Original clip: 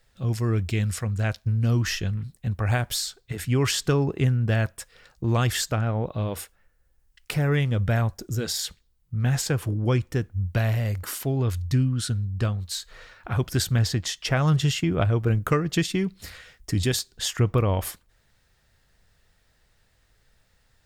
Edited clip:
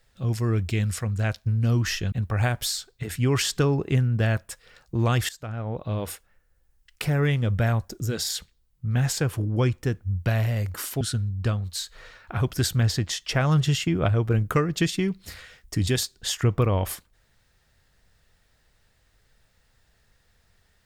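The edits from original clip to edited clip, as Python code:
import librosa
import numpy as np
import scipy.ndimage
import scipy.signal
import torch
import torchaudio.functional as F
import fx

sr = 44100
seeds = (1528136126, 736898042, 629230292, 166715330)

y = fx.edit(x, sr, fx.cut(start_s=2.12, length_s=0.29),
    fx.fade_in_from(start_s=5.58, length_s=0.71, floor_db=-19.5),
    fx.cut(start_s=11.3, length_s=0.67), tone=tone)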